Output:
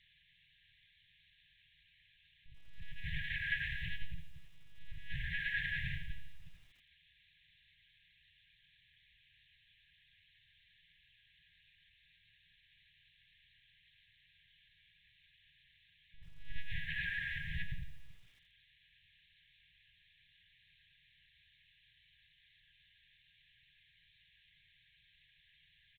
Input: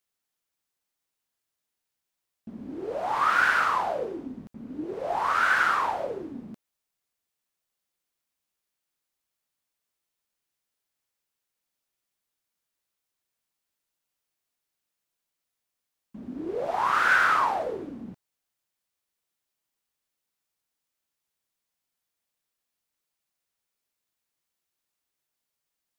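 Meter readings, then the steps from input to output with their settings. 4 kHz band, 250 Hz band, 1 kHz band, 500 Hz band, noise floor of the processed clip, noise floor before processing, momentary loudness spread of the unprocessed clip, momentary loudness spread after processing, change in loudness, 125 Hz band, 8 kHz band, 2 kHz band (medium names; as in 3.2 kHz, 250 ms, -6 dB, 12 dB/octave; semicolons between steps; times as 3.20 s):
-7.0 dB, -19.5 dB, under -40 dB, under -40 dB, -70 dBFS, -85 dBFS, 20 LU, 18 LU, -16.0 dB, +3.0 dB, under -25 dB, -13.0 dB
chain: gate -30 dBFS, range -7 dB; delay 129 ms -17.5 dB; dynamic bell 110 Hz, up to -4 dB, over -54 dBFS, Q 0.92; compressor with a negative ratio -28 dBFS, ratio -1; static phaser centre 370 Hz, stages 4; feedback comb 610 Hz, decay 0.2 s, harmonics all, mix 70%; small resonant body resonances 1/1.6 kHz, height 9 dB, ringing for 85 ms; added noise blue -63 dBFS; monotone LPC vocoder at 8 kHz 280 Hz; distance through air 100 m; FFT band-reject 180–1600 Hz; bit-crushed delay 85 ms, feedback 55%, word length 12-bit, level -13.5 dB; trim +11.5 dB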